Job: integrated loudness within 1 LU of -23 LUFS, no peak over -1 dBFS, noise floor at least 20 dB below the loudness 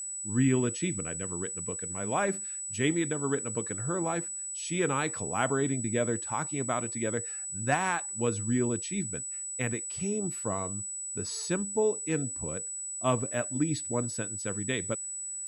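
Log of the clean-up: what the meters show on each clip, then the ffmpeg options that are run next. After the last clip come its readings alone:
steady tone 7.9 kHz; tone level -35 dBFS; loudness -30.5 LUFS; peak level -12.5 dBFS; loudness target -23.0 LUFS
-> -af "bandreject=f=7900:w=30"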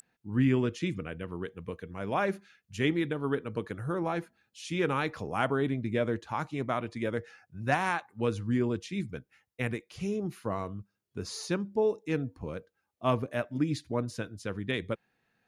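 steady tone not found; loudness -32.5 LUFS; peak level -13.0 dBFS; loudness target -23.0 LUFS
-> -af "volume=2.99"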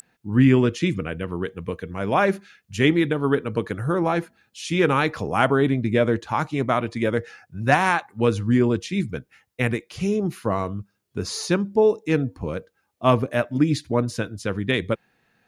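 loudness -23.0 LUFS; peak level -3.5 dBFS; noise floor -73 dBFS

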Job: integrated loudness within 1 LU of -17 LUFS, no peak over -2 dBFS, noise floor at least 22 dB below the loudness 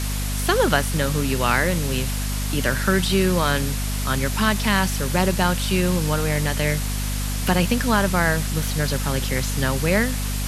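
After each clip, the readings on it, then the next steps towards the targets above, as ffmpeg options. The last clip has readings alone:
hum 50 Hz; highest harmonic 250 Hz; hum level -23 dBFS; noise floor -25 dBFS; noise floor target -44 dBFS; loudness -21.5 LUFS; peak level -3.0 dBFS; loudness target -17.0 LUFS
-> -af "bandreject=f=50:t=h:w=4,bandreject=f=100:t=h:w=4,bandreject=f=150:t=h:w=4,bandreject=f=200:t=h:w=4,bandreject=f=250:t=h:w=4"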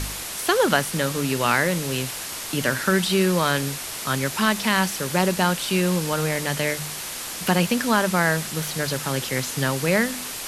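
hum not found; noise floor -33 dBFS; noise floor target -45 dBFS
-> -af "afftdn=nr=12:nf=-33"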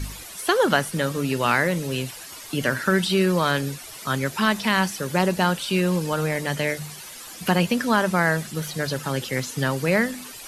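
noise floor -40 dBFS; noise floor target -45 dBFS
-> -af "afftdn=nr=6:nf=-40"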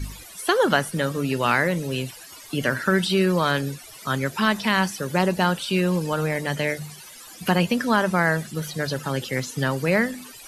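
noise floor -43 dBFS; noise floor target -46 dBFS
-> -af "afftdn=nr=6:nf=-43"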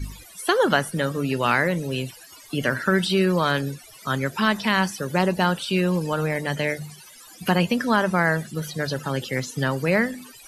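noise floor -47 dBFS; loudness -23.5 LUFS; peak level -4.5 dBFS; loudness target -17.0 LUFS
-> -af "volume=2.11,alimiter=limit=0.794:level=0:latency=1"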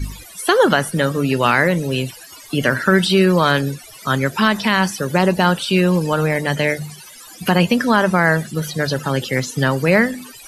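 loudness -17.5 LUFS; peak level -2.0 dBFS; noise floor -40 dBFS

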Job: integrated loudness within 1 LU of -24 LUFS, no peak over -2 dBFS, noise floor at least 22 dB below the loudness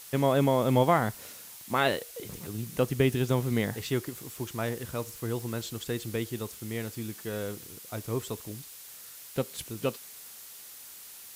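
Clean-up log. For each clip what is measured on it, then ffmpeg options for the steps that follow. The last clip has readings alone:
noise floor -47 dBFS; noise floor target -53 dBFS; loudness -30.5 LUFS; peak level -11.5 dBFS; loudness target -24.0 LUFS
-> -af "afftdn=nr=6:nf=-47"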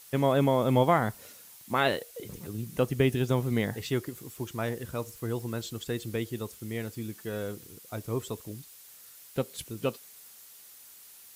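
noise floor -52 dBFS; noise floor target -53 dBFS
-> -af "afftdn=nr=6:nf=-52"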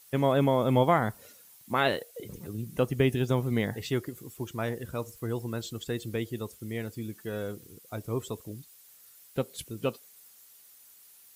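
noise floor -56 dBFS; loudness -30.5 LUFS; peak level -11.5 dBFS; loudness target -24.0 LUFS
-> -af "volume=2.11"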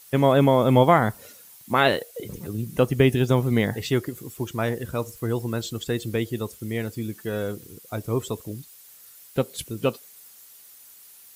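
loudness -24.0 LUFS; peak level -5.0 dBFS; noise floor -49 dBFS

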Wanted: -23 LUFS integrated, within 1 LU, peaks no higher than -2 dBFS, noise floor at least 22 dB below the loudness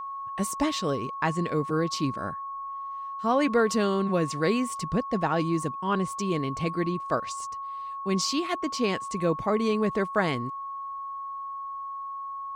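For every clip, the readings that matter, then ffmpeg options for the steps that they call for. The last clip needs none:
steady tone 1.1 kHz; tone level -33 dBFS; loudness -28.5 LUFS; peak level -11.5 dBFS; loudness target -23.0 LUFS
-> -af "bandreject=f=1100:w=30"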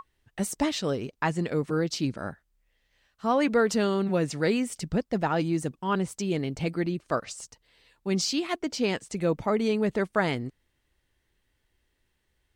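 steady tone not found; loudness -28.0 LUFS; peak level -12.0 dBFS; loudness target -23.0 LUFS
-> -af "volume=1.78"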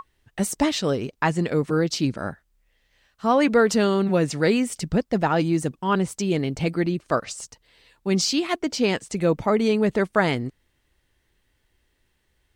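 loudness -23.0 LUFS; peak level -7.0 dBFS; noise floor -70 dBFS

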